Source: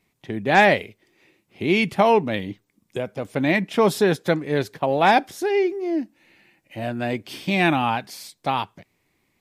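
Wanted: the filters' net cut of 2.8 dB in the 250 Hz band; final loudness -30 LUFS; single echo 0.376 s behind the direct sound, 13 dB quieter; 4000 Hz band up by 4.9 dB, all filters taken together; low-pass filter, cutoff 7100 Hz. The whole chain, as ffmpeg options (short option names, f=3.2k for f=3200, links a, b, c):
-af "lowpass=7.1k,equalizer=f=250:t=o:g=-4,equalizer=f=4k:t=o:g=6.5,aecho=1:1:376:0.224,volume=-8dB"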